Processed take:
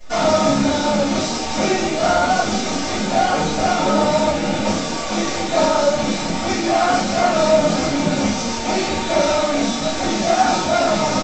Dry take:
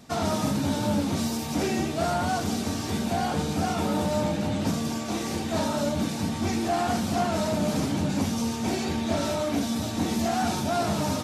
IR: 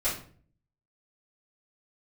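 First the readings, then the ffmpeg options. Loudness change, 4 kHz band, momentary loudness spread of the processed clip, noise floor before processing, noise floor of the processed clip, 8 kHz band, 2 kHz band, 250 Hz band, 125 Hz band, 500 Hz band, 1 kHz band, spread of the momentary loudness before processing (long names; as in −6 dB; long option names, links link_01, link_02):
+8.5 dB, +10.5 dB, 5 LU, −31 dBFS, −24 dBFS, +9.0 dB, +11.5 dB, +5.0 dB, +1.5 dB, +11.5 dB, +11.0 dB, 3 LU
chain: -filter_complex "[0:a]highpass=frequency=330:poles=1,acontrast=75,aresample=16000,acrusher=bits=6:dc=4:mix=0:aa=0.000001,aresample=44100,flanger=delay=1.3:depth=9.1:regen=28:speed=1.4:shape=triangular[link_01];[1:a]atrim=start_sample=2205,atrim=end_sample=3969[link_02];[link_01][link_02]afir=irnorm=-1:irlink=0"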